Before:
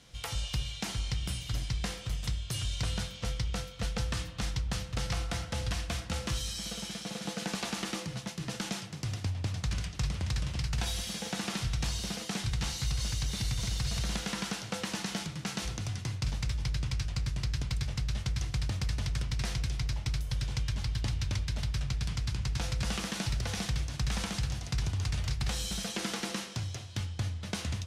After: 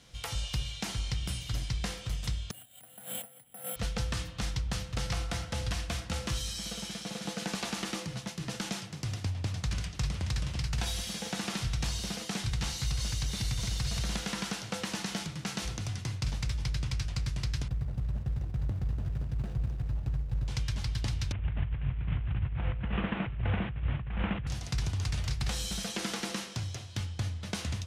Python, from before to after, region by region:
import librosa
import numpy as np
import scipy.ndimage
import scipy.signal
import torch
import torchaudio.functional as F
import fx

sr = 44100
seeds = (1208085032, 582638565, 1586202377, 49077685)

y = fx.chain(x, sr, fx.over_compress(threshold_db=-45.0, ratio=-1.0),
    fx.cabinet(low_hz=160.0, low_slope=24, high_hz=2900.0, hz=(170.0, 240.0, 370.0, 730.0, 1100.0, 2400.0), db=(-9, 4, -8, 10, -7, -6)),
    fx.resample_bad(factor=4, down='filtered', up='zero_stuff'), at=(2.51, 3.76))
y = fx.chain(y, sr, fx.median_filter(points=41),
    fx.high_shelf(hz=12000.0, db=-7.0),
    fx.echo_single(ms=234, db=-12.0), at=(17.68, 20.48))
y = fx.chain(y, sr, fx.cvsd(bps=16000),
    fx.over_compress(threshold_db=-35.0, ratio=-0.5),
    fx.peak_eq(hz=90.0, db=6.5, octaves=2.5), at=(21.32, 24.47))